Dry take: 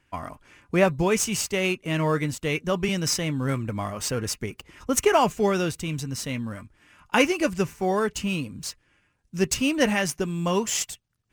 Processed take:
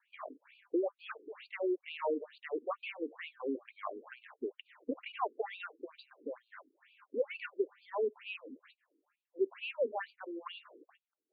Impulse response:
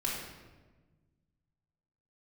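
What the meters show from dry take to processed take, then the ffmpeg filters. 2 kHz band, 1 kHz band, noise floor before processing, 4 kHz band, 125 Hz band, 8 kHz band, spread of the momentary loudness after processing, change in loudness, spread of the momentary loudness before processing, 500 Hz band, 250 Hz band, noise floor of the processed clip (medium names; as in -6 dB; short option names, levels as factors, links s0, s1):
-16.5 dB, -14.5 dB, -69 dBFS, -19.5 dB, under -40 dB, under -40 dB, 14 LU, -14.5 dB, 14 LU, -11.0 dB, -16.5 dB, under -85 dBFS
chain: -filter_complex "[0:a]acrossover=split=220|770|6900[s0][s1][s2][s3];[s0]asoftclip=type=tanh:threshold=0.0211[s4];[s4][s1][s2][s3]amix=inputs=4:normalize=0,highshelf=f=3500:g=-6.5,acrossover=split=280|1000|2200[s5][s6][s7][s8];[s5]acompressor=threshold=0.00708:ratio=4[s9];[s6]acompressor=threshold=0.0398:ratio=4[s10];[s7]acompressor=threshold=0.02:ratio=4[s11];[s8]acompressor=threshold=0.00562:ratio=4[s12];[s9][s10][s11][s12]amix=inputs=4:normalize=0,lowshelf=f=290:g=8.5,afftfilt=real='re*between(b*sr/1024,330*pow(3400/330,0.5+0.5*sin(2*PI*2.2*pts/sr))/1.41,330*pow(3400/330,0.5+0.5*sin(2*PI*2.2*pts/sr))*1.41)':imag='im*between(b*sr/1024,330*pow(3400/330,0.5+0.5*sin(2*PI*2.2*pts/sr))/1.41,330*pow(3400/330,0.5+0.5*sin(2*PI*2.2*pts/sr))*1.41)':win_size=1024:overlap=0.75,volume=0.708"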